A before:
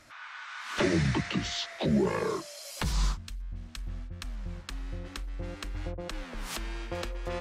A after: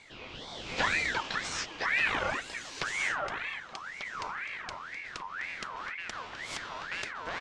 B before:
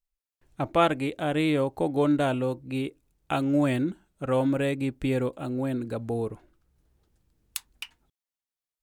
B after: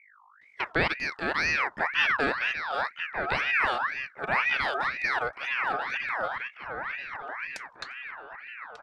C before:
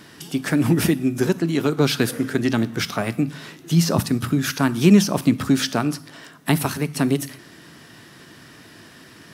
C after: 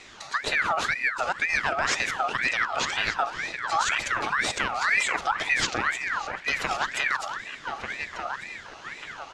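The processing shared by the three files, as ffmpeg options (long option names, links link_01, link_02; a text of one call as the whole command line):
ffmpeg -i in.wav -filter_complex "[0:a]alimiter=limit=-13.5dB:level=0:latency=1:release=90,lowpass=frequency=6200:width=0.5412,lowpass=frequency=6200:width=1.3066,lowshelf=frequency=200:gain=-7,asplit=2[link_01][link_02];[link_02]adelay=1192,lowpass=frequency=1800:poles=1,volume=-6dB,asplit=2[link_03][link_04];[link_04]adelay=1192,lowpass=frequency=1800:poles=1,volume=0.53,asplit=2[link_05][link_06];[link_06]adelay=1192,lowpass=frequency=1800:poles=1,volume=0.53,asplit=2[link_07][link_08];[link_08]adelay=1192,lowpass=frequency=1800:poles=1,volume=0.53,asplit=2[link_09][link_10];[link_10]adelay=1192,lowpass=frequency=1800:poles=1,volume=0.53,asplit=2[link_11][link_12];[link_12]adelay=1192,lowpass=frequency=1800:poles=1,volume=0.53,asplit=2[link_13][link_14];[link_14]adelay=1192,lowpass=frequency=1800:poles=1,volume=0.53[link_15];[link_03][link_05][link_07][link_09][link_11][link_13][link_15]amix=inputs=7:normalize=0[link_16];[link_01][link_16]amix=inputs=2:normalize=0,aeval=exprs='val(0)+0.00158*(sin(2*PI*50*n/s)+sin(2*PI*2*50*n/s)/2+sin(2*PI*3*50*n/s)/3+sin(2*PI*4*50*n/s)/4+sin(2*PI*5*50*n/s)/5)':channel_layout=same,aeval=exprs='val(0)*sin(2*PI*1600*n/s+1600*0.4/2*sin(2*PI*2*n/s))':channel_layout=same,volume=2dB" out.wav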